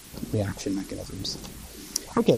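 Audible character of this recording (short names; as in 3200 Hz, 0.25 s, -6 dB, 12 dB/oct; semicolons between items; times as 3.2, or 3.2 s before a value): phasing stages 4, 0.93 Hz, lowest notch 100–2500 Hz; a quantiser's noise floor 8-bit, dither triangular; MP3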